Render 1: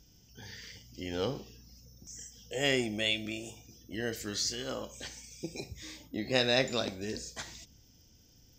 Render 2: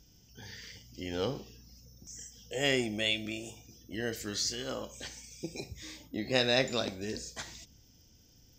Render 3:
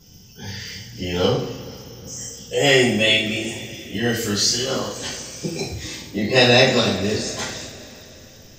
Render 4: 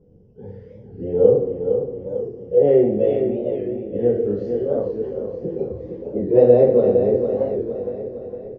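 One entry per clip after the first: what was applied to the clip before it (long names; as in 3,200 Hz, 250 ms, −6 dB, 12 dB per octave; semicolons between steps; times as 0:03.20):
no processing that can be heard
coupled-rooms reverb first 0.45 s, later 3.8 s, from −20 dB, DRR −10 dB; level +4 dB
low-pass with resonance 480 Hz, resonance Q 4.9; on a send: repeating echo 460 ms, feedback 53%, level −7 dB; on the sum: wow of a warped record 45 rpm, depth 160 cents; level −5 dB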